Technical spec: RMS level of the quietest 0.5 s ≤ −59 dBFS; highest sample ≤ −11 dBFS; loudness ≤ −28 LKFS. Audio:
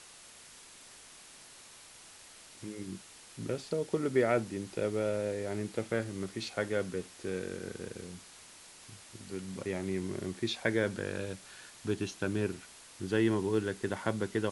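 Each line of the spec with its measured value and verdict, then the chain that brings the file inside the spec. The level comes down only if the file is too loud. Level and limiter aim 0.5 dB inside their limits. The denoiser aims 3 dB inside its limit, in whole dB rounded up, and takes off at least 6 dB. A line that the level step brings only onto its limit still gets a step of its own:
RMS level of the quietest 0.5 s −54 dBFS: out of spec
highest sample −14.5 dBFS: in spec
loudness −34.5 LKFS: in spec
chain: broadband denoise 8 dB, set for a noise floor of −54 dBFS

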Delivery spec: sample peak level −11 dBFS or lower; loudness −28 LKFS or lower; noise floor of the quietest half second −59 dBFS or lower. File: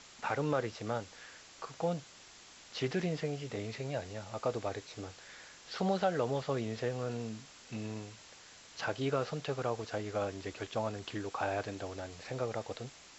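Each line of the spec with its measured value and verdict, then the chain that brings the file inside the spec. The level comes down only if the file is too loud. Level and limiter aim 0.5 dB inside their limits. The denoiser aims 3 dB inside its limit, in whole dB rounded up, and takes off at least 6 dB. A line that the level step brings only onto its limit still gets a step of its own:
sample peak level −18.5 dBFS: in spec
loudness −37.0 LKFS: in spec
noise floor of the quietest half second −56 dBFS: out of spec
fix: broadband denoise 6 dB, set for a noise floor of −56 dBFS

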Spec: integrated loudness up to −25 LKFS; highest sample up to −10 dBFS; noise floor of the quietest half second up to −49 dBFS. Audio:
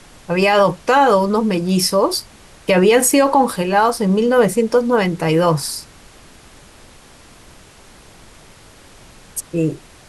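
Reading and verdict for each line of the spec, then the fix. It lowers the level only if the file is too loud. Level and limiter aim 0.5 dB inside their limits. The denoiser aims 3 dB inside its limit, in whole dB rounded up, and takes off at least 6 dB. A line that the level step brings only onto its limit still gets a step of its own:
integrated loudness −16.0 LKFS: out of spec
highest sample −4.0 dBFS: out of spec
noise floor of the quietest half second −44 dBFS: out of spec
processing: level −9.5 dB

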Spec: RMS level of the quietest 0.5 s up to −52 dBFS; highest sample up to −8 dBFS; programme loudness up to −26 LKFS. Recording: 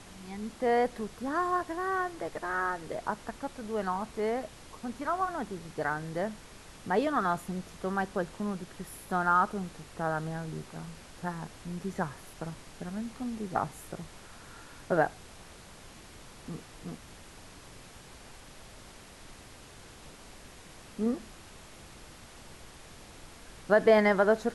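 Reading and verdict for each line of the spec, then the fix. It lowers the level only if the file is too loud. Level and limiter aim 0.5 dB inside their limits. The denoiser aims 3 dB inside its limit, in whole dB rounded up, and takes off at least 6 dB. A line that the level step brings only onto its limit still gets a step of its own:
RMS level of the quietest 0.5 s −50 dBFS: out of spec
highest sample −9.5 dBFS: in spec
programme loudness −31.5 LKFS: in spec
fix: broadband denoise 6 dB, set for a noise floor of −50 dBFS

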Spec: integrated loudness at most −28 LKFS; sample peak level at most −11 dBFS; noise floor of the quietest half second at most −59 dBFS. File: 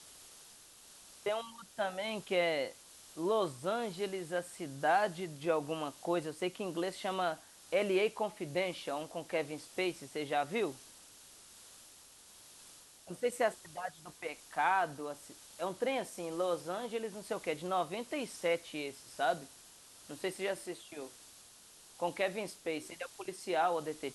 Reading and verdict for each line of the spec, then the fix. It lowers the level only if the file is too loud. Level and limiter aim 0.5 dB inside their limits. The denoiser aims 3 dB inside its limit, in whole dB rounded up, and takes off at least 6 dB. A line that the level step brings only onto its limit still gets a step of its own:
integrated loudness −36.5 LKFS: in spec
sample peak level −17.5 dBFS: in spec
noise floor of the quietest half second −58 dBFS: out of spec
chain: broadband denoise 6 dB, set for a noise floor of −58 dBFS

